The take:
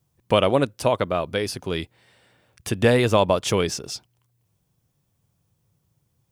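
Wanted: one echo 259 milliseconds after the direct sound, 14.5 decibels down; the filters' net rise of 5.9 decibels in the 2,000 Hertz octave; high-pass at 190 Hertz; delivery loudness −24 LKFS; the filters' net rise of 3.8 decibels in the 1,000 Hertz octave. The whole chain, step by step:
high-pass filter 190 Hz
parametric band 1,000 Hz +3 dB
parametric band 2,000 Hz +6.5 dB
single-tap delay 259 ms −14.5 dB
level −3.5 dB

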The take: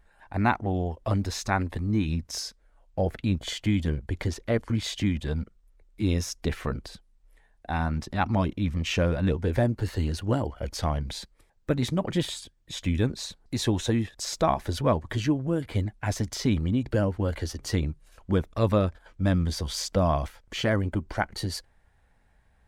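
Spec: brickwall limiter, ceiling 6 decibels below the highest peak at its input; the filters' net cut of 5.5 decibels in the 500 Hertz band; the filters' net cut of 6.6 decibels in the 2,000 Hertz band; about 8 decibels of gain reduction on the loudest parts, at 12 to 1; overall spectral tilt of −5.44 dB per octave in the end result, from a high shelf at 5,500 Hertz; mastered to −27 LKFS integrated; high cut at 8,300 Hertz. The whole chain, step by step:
low-pass filter 8,300 Hz
parametric band 500 Hz −6.5 dB
parametric band 2,000 Hz −8 dB
high-shelf EQ 5,500 Hz −5.5 dB
downward compressor 12 to 1, threshold −28 dBFS
level +9.5 dB
brickwall limiter −15.5 dBFS

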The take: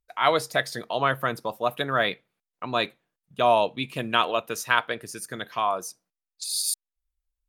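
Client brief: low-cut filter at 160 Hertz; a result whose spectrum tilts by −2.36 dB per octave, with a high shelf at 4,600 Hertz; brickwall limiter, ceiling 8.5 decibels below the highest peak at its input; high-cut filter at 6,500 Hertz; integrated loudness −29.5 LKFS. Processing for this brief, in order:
high-pass filter 160 Hz
low-pass filter 6,500 Hz
high-shelf EQ 4,600 Hz +4 dB
level −1.5 dB
brickwall limiter −14.5 dBFS

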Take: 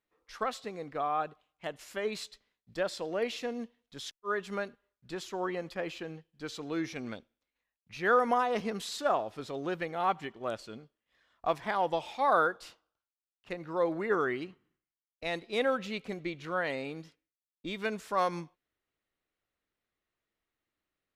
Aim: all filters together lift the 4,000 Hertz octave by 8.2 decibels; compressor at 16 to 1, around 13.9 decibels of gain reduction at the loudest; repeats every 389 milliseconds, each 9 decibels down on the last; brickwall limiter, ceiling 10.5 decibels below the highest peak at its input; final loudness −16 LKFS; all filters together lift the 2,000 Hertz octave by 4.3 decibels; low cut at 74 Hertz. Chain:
high-pass filter 74 Hz
parametric band 2,000 Hz +4 dB
parametric band 4,000 Hz +8.5 dB
downward compressor 16 to 1, threshold −33 dBFS
brickwall limiter −31 dBFS
repeating echo 389 ms, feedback 35%, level −9 dB
level +25.5 dB

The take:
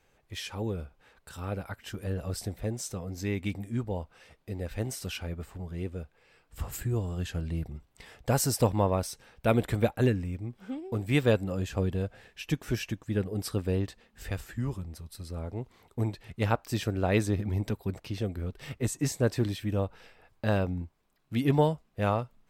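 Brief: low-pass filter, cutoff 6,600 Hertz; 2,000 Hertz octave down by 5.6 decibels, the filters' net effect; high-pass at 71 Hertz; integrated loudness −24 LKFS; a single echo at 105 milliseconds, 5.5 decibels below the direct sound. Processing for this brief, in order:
high-pass filter 71 Hz
low-pass filter 6,600 Hz
parametric band 2,000 Hz −7.5 dB
single-tap delay 105 ms −5.5 dB
level +7 dB

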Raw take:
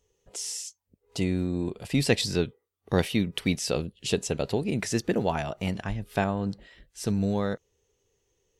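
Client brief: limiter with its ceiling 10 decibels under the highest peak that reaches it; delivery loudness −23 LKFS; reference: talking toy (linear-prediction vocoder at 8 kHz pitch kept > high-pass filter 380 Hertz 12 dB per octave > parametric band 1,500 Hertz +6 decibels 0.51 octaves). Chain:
brickwall limiter −18.5 dBFS
linear-prediction vocoder at 8 kHz pitch kept
high-pass filter 380 Hz 12 dB per octave
parametric band 1,500 Hz +6 dB 0.51 octaves
level +13 dB

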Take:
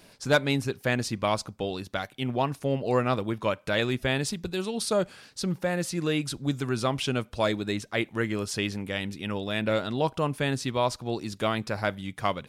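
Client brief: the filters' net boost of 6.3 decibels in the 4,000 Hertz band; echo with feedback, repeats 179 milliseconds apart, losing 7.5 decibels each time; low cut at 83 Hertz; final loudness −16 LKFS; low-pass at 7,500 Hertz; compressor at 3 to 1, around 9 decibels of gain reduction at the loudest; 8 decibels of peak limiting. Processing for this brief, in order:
high-pass filter 83 Hz
low-pass filter 7,500 Hz
parametric band 4,000 Hz +8 dB
downward compressor 3 to 1, threshold −28 dBFS
brickwall limiter −21 dBFS
repeating echo 179 ms, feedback 42%, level −7.5 dB
level +16.5 dB

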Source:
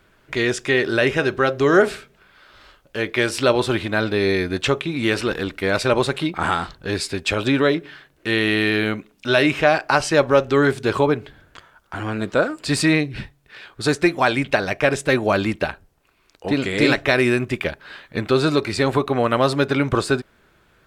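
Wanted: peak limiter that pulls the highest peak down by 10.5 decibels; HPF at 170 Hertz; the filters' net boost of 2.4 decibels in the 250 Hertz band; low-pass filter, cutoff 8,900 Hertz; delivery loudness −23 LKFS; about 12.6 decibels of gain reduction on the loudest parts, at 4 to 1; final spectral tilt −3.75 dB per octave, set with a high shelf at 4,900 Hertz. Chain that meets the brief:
high-pass filter 170 Hz
low-pass filter 8,900 Hz
parametric band 250 Hz +4 dB
high-shelf EQ 4,900 Hz −6.5 dB
downward compressor 4 to 1, threshold −25 dBFS
level +8.5 dB
brickwall limiter −11 dBFS

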